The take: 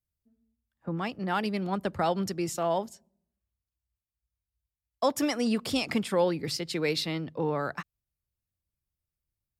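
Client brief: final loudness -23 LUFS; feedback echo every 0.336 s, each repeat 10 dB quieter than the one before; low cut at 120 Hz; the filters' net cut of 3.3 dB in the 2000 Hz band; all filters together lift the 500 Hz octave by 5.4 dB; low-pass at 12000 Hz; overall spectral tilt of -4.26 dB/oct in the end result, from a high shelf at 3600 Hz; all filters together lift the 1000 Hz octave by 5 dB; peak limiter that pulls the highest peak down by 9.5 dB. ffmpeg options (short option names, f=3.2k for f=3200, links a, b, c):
-af "highpass=120,lowpass=12k,equalizer=f=500:t=o:g=5,equalizer=f=1k:t=o:g=6,equalizer=f=2k:t=o:g=-9,highshelf=f=3.6k:g=7.5,alimiter=limit=-17dB:level=0:latency=1,aecho=1:1:336|672|1008|1344:0.316|0.101|0.0324|0.0104,volume=5.5dB"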